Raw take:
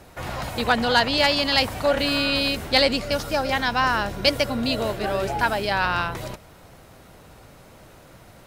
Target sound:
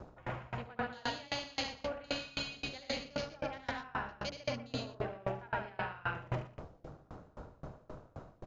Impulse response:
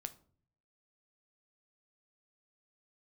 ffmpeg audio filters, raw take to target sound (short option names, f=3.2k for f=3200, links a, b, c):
-filter_complex "[0:a]aecho=1:1:72.89|113.7:0.708|0.355,areverse,acompressor=threshold=-32dB:ratio=16,areverse,afwtdn=0.00631,asplit=2[a][b];[1:a]atrim=start_sample=2205,adelay=120[c];[b][c]afir=irnorm=-1:irlink=0,volume=0.5dB[d];[a][d]amix=inputs=2:normalize=0,aresample=16000,aresample=44100,aeval=exprs='val(0)*pow(10,-27*if(lt(mod(3.8*n/s,1),2*abs(3.8)/1000),1-mod(3.8*n/s,1)/(2*abs(3.8)/1000),(mod(3.8*n/s,1)-2*abs(3.8)/1000)/(1-2*abs(3.8)/1000))/20)':c=same,volume=2dB"